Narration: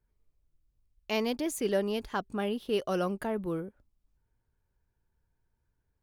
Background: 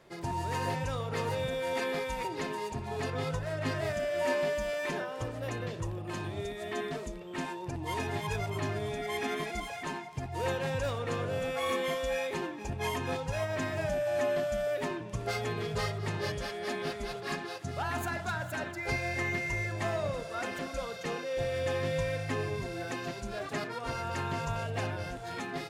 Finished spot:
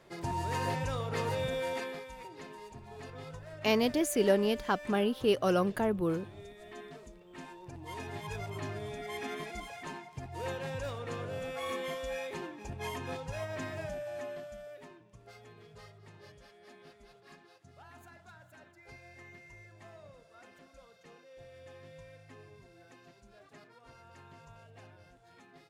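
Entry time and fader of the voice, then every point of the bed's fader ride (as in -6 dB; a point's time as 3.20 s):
2.55 s, +2.5 dB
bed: 1.63 s -0.5 dB
2.07 s -12 dB
7.22 s -12 dB
8.47 s -5.5 dB
13.71 s -5.5 dB
15.11 s -20.5 dB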